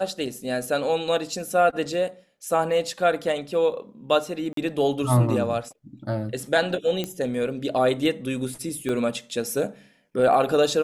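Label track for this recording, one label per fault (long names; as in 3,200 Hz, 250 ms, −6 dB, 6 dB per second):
4.530000	4.570000	drop-out 43 ms
7.040000	7.040000	click −14 dBFS
8.890000	8.890000	drop-out 3.2 ms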